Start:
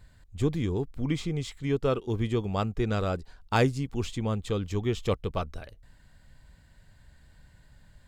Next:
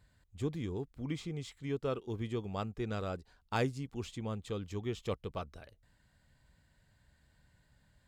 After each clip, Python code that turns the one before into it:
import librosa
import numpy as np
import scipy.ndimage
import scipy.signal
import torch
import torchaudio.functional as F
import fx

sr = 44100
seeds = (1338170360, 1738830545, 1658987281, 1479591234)

y = fx.highpass(x, sr, hz=72.0, slope=6)
y = y * 10.0 ** (-8.5 / 20.0)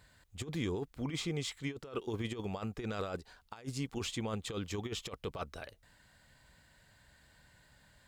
y = fx.low_shelf(x, sr, hz=320.0, db=-9.5)
y = fx.over_compress(y, sr, threshold_db=-43.0, ratio=-0.5)
y = y * 10.0 ** (6.5 / 20.0)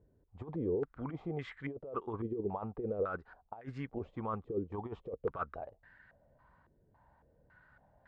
y = fx.filter_held_lowpass(x, sr, hz=3.6, low_hz=400.0, high_hz=1700.0)
y = y * 10.0 ** (-3.5 / 20.0)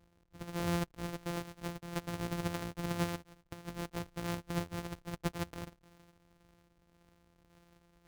y = np.r_[np.sort(x[:len(x) // 256 * 256].reshape(-1, 256), axis=1).ravel(), x[len(x) // 256 * 256:]]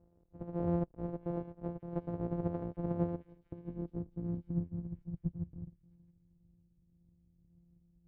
y = fx.filter_sweep_lowpass(x, sr, from_hz=570.0, to_hz=160.0, start_s=2.91, end_s=5.27, q=1.2)
y = fx.echo_stepped(y, sr, ms=669, hz=2700.0, octaves=0.7, feedback_pct=70, wet_db=-9.5)
y = y * 10.0 ** (1.0 / 20.0)